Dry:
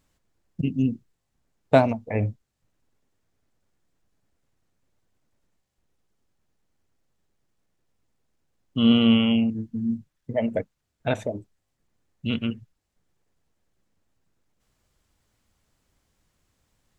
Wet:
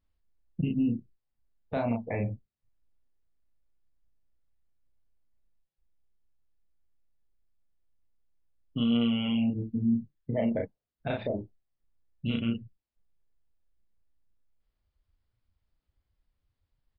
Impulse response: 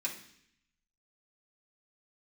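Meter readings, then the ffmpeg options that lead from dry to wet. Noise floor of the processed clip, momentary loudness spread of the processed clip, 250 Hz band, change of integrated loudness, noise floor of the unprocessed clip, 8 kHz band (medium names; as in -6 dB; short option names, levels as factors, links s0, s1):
-85 dBFS, 12 LU, -5.5 dB, -6.5 dB, -78 dBFS, no reading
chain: -filter_complex "[0:a]aresample=11025,aresample=44100,acompressor=threshold=0.0891:ratio=6,alimiter=limit=0.0841:level=0:latency=1:release=25,asplit=2[s0][s1];[s1]adelay=34,volume=0.75[s2];[s0][s2]amix=inputs=2:normalize=0,afftdn=nr=17:nf=-54"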